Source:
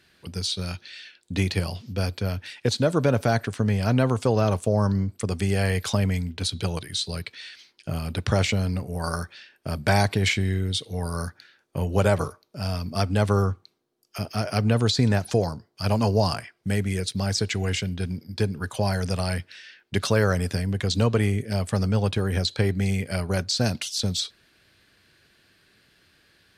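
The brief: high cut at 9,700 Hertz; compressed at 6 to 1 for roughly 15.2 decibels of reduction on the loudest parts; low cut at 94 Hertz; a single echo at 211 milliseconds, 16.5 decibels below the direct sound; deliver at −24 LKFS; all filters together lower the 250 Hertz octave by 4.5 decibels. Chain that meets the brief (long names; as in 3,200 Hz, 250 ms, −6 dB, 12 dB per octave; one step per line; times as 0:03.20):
high-pass filter 94 Hz
low-pass filter 9,700 Hz
parametric band 250 Hz −6 dB
downward compressor 6 to 1, threshold −35 dBFS
single-tap delay 211 ms −16.5 dB
level +15 dB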